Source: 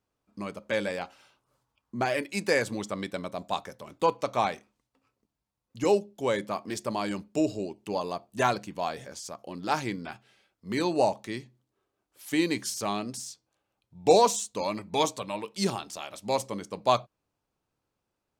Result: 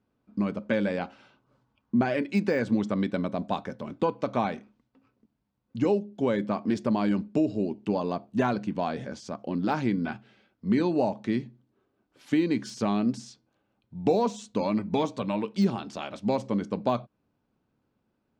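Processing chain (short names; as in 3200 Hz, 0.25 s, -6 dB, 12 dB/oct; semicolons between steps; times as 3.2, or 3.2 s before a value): LPF 4000 Hz 12 dB/oct; de-esser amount 90%; bell 190 Hz +7.5 dB 2.9 oct; compressor 2.5:1, threshold -27 dBFS, peak gain reduction 11 dB; small resonant body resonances 230/1500 Hz, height 7 dB; gain +1.5 dB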